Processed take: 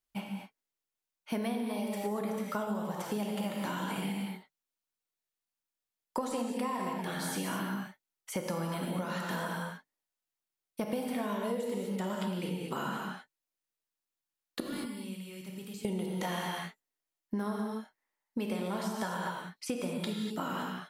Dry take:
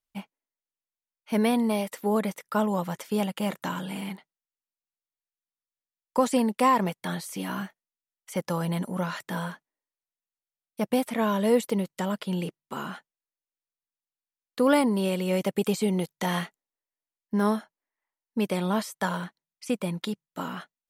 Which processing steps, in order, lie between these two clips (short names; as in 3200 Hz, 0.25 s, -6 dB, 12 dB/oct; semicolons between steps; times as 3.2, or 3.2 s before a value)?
14.6–15.85 passive tone stack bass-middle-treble 6-0-2; non-linear reverb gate 0.27 s flat, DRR 0 dB; compressor 10:1, threshold -31 dBFS, peak gain reduction 17 dB